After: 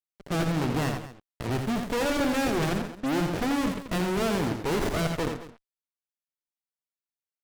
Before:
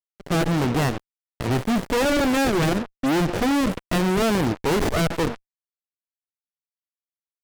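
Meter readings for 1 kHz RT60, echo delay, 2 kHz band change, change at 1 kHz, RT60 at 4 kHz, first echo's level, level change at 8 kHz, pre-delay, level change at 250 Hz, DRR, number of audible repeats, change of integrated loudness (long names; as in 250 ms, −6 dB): no reverb audible, 84 ms, −5.5 dB, −5.5 dB, no reverb audible, −6.5 dB, −5.5 dB, no reverb audible, −5.5 dB, no reverb audible, 2, −5.5 dB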